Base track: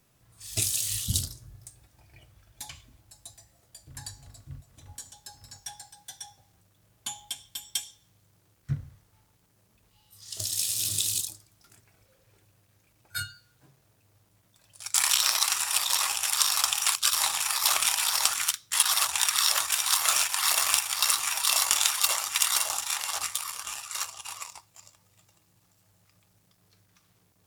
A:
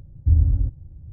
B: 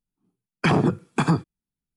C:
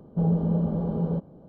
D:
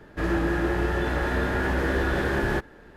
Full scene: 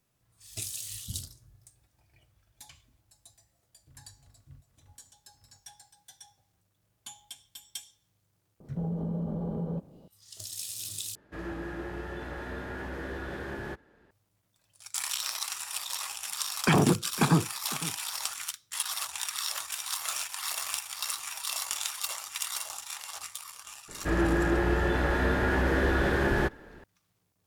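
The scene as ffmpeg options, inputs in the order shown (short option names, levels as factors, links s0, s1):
-filter_complex "[4:a]asplit=2[s0][s1];[0:a]volume=0.335[s2];[3:a]acompressor=threshold=0.0631:ratio=6:attack=3.2:release=140:knee=1:detection=peak[s3];[s0]highpass=56[s4];[2:a]aecho=1:1:506:0.158[s5];[s2]asplit=2[s6][s7];[s6]atrim=end=11.154[s8];[s4]atrim=end=2.96,asetpts=PTS-STARTPTS,volume=0.237[s9];[s7]atrim=start=14.106[s10];[s3]atrim=end=1.48,asetpts=PTS-STARTPTS,volume=0.596,afade=t=in:d=0.004:c=hsin,afade=t=out:st=1.476:d=0.004:c=hsin,adelay=8600[s11];[s5]atrim=end=1.96,asetpts=PTS-STARTPTS,volume=0.708,afade=t=in:d=0.004:c=hsin,afade=t=out:st=1.956:d=0.004:c=hsin,adelay=16030[s12];[s1]atrim=end=2.96,asetpts=PTS-STARTPTS,volume=0.891,afade=t=in:d=0.004:c=hsin,afade=t=out:st=2.956:d=0.004:c=hsin,adelay=23880[s13];[s8][s9]acrossfade=d=0.004:c1=hsin:c2=hsin[s14];[s14][s10]acrossfade=d=0.004:c1=hsin:c2=hsin[s15];[s15][s11][s12][s13]amix=inputs=4:normalize=0"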